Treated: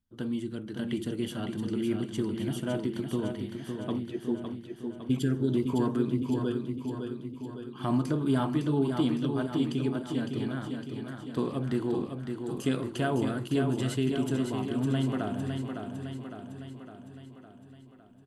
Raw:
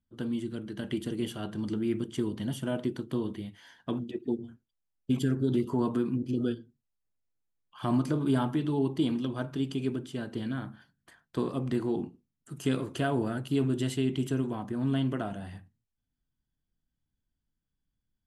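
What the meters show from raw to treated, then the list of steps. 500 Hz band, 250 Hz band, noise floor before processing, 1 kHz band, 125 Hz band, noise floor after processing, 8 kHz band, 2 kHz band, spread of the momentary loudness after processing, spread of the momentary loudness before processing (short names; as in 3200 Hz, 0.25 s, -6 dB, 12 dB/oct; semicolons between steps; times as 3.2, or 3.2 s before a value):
+1.5 dB, +1.0 dB, -85 dBFS, +1.5 dB, +1.5 dB, -51 dBFS, +1.5 dB, +1.5 dB, 11 LU, 10 LU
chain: feedback echo 0.558 s, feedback 58%, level -6 dB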